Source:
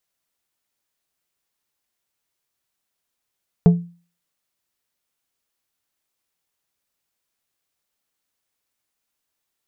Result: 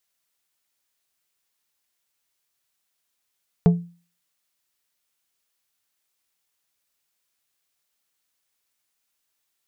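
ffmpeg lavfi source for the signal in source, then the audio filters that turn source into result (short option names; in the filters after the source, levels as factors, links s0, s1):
-f lavfi -i "aevalsrc='0.562*pow(10,-3*t/0.38)*sin(2*PI*172*t)+0.188*pow(10,-3*t/0.2)*sin(2*PI*430*t)+0.0631*pow(10,-3*t/0.144)*sin(2*PI*688*t)+0.0211*pow(10,-3*t/0.123)*sin(2*PI*860*t)+0.00708*pow(10,-3*t/0.103)*sin(2*PI*1118*t)':d=0.89:s=44100"
-af "tiltshelf=f=1100:g=-3.5"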